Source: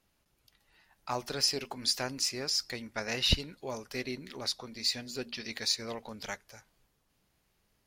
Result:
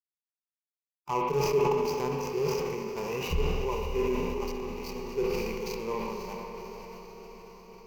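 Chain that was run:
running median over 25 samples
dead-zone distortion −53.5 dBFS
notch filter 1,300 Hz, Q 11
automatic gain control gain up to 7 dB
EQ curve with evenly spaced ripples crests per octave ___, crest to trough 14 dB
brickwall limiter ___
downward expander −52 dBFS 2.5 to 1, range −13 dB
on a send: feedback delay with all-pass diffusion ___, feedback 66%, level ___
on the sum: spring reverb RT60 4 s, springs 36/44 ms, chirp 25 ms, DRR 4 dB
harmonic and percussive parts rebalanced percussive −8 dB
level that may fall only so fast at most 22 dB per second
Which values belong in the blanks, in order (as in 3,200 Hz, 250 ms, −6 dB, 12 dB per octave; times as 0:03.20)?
0.78, −16.5 dBFS, 543 ms, −11 dB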